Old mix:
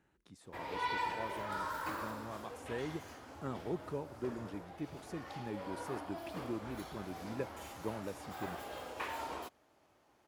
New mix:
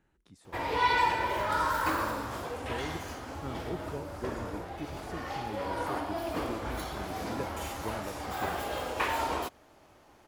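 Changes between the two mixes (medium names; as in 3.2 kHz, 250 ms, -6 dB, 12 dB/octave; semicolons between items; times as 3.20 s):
background +10.5 dB; master: remove high-pass 100 Hz 6 dB/octave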